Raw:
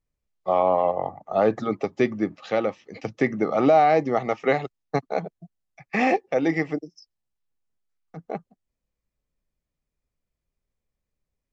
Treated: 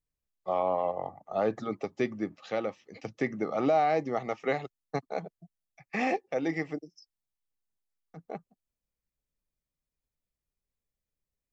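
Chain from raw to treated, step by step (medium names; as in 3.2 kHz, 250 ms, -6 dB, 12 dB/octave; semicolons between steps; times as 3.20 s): treble shelf 5.8 kHz +6 dB; trim -8 dB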